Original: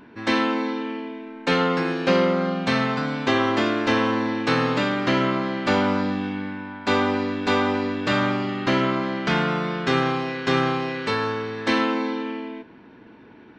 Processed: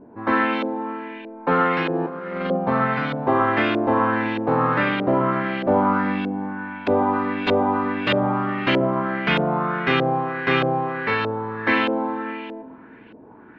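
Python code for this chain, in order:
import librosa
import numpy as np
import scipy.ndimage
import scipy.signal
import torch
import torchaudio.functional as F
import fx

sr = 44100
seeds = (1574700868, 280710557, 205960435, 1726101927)

y = fx.over_compress(x, sr, threshold_db=-25.0, ratio=-0.5, at=(1.93, 2.56), fade=0.02)
y = fx.echo_alternate(y, sr, ms=128, hz=1400.0, feedback_pct=59, wet_db=-11.0)
y = fx.filter_lfo_lowpass(y, sr, shape='saw_up', hz=1.6, low_hz=540.0, high_hz=3200.0, q=2.2)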